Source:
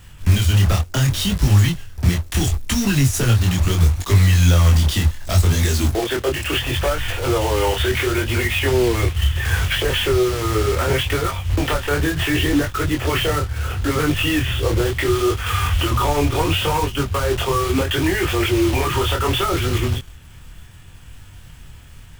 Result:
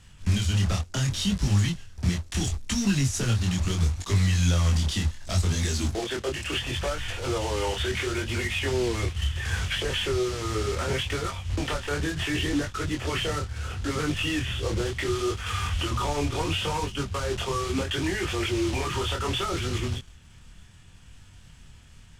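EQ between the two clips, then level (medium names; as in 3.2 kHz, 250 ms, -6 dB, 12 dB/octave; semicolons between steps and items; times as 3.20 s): Chebyshev low-pass 6.5 kHz, order 2; peaking EQ 200 Hz +6.5 dB 0.4 oct; treble shelf 5 kHz +7 dB; -8.5 dB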